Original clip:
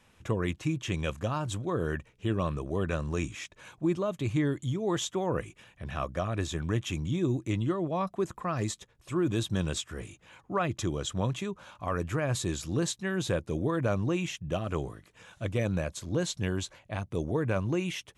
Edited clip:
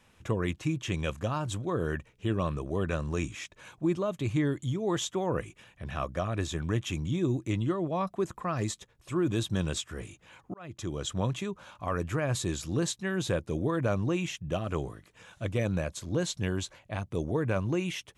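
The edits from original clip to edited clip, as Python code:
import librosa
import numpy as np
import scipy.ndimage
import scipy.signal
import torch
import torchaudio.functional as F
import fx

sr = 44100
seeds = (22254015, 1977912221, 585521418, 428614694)

y = fx.edit(x, sr, fx.fade_in_span(start_s=10.54, length_s=0.54), tone=tone)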